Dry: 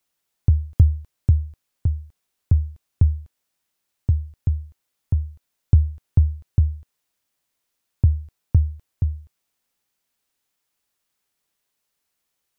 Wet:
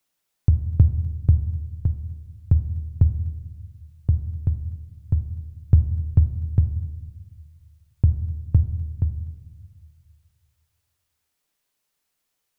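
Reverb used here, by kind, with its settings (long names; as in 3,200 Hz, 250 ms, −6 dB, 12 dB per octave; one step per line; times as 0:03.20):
rectangular room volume 700 cubic metres, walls mixed, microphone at 0.45 metres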